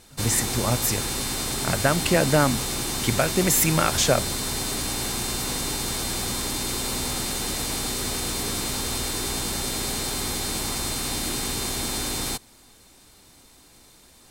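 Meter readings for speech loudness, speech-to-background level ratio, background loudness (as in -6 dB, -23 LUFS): -23.0 LUFS, 3.0 dB, -26.0 LUFS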